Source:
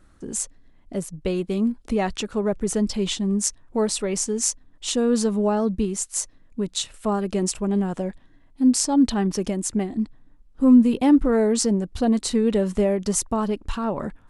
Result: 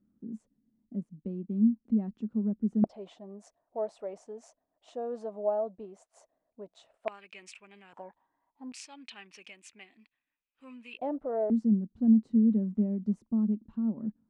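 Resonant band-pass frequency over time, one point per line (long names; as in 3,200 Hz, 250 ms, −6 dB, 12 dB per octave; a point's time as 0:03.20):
resonant band-pass, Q 6.3
220 Hz
from 0:02.84 660 Hz
from 0:07.08 2,400 Hz
from 0:07.93 910 Hz
from 0:08.72 2,500 Hz
from 0:10.99 630 Hz
from 0:11.50 220 Hz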